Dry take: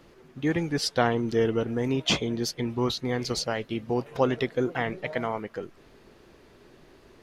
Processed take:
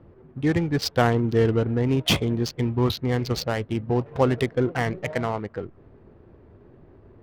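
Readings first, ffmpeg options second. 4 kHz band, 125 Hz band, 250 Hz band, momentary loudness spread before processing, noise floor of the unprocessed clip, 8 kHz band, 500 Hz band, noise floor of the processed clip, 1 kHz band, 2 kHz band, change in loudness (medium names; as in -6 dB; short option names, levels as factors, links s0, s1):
+1.0 dB, +8.5 dB, +4.0 dB, 7 LU, -55 dBFS, -1.0 dB, +3.0 dB, -53 dBFS, +2.5 dB, +2.0 dB, +3.5 dB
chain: -af "adynamicsmooth=sensitivity=5.5:basefreq=1000,equalizer=f=91:t=o:w=1.1:g=11,volume=1.33"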